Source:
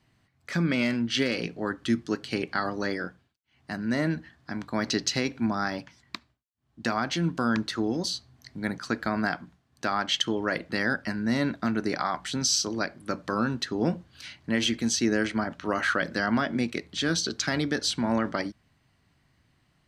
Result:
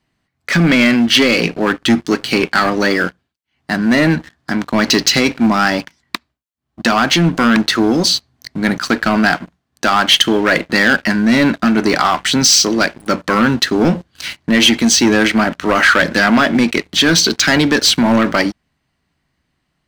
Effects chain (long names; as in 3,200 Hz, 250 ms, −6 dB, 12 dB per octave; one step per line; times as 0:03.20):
parametric band 110 Hz −10.5 dB 0.37 octaves
leveller curve on the samples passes 3
dynamic equaliser 2,500 Hz, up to +4 dB, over −33 dBFS, Q 1.2
level +5.5 dB